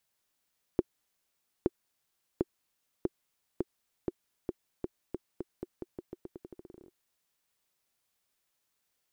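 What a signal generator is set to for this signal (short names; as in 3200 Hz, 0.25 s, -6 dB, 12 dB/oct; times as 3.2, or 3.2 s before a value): bouncing ball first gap 0.87 s, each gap 0.86, 359 Hz, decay 33 ms -12.5 dBFS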